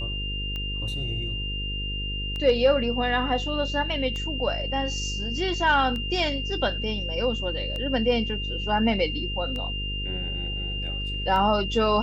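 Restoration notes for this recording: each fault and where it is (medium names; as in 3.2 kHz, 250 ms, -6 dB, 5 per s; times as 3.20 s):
buzz 50 Hz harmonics 10 -32 dBFS
tick 33 1/3 rpm -21 dBFS
whine 2.8 kHz -31 dBFS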